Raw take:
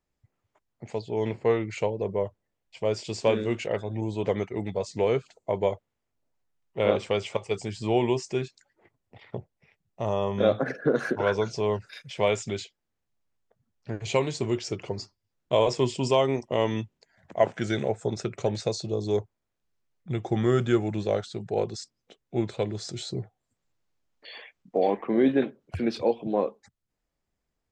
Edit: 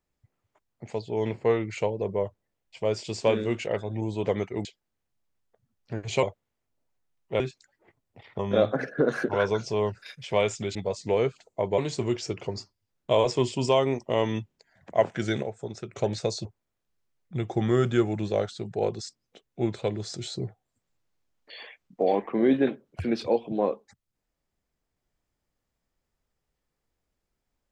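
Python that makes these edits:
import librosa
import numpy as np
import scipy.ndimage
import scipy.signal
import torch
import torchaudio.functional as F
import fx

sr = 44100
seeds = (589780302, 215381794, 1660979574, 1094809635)

y = fx.edit(x, sr, fx.swap(start_s=4.65, length_s=1.03, other_s=12.62, other_length_s=1.58),
    fx.cut(start_s=6.85, length_s=1.52),
    fx.cut(start_s=9.36, length_s=0.9),
    fx.clip_gain(start_s=17.85, length_s=0.5, db=-7.0),
    fx.cut(start_s=18.87, length_s=0.33), tone=tone)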